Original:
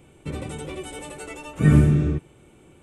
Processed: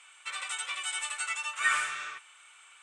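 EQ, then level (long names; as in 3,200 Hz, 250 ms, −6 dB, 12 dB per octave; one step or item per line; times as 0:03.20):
elliptic band-pass filter 1,200–8,500 Hz, stop band 60 dB
+8.0 dB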